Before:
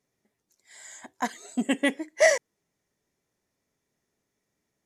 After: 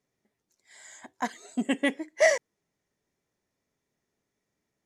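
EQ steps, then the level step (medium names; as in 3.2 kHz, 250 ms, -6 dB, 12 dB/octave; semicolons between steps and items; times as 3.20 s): treble shelf 8.7 kHz -7.5 dB; -1.5 dB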